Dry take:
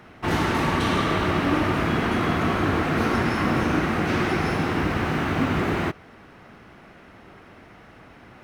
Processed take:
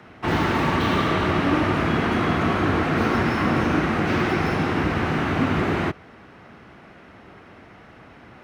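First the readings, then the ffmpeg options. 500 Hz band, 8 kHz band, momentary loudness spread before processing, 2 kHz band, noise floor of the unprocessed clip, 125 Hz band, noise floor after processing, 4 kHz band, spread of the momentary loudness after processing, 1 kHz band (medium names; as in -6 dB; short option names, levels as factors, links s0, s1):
+1.5 dB, -3.0 dB, 2 LU, +1.0 dB, -49 dBFS, +1.5 dB, -47 dBFS, +0.5 dB, 2 LU, +1.5 dB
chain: -filter_complex "[0:a]highpass=47,highshelf=f=9900:g=-11.5,acrossover=split=110|520|6200[s0][s1][s2][s3];[s3]aeval=exprs='(mod(237*val(0)+1,2)-1)/237':c=same[s4];[s0][s1][s2][s4]amix=inputs=4:normalize=0,volume=1.19"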